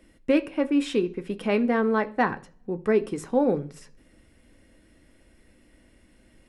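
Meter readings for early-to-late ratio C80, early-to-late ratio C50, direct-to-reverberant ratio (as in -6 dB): 24.5 dB, 20.0 dB, 9.0 dB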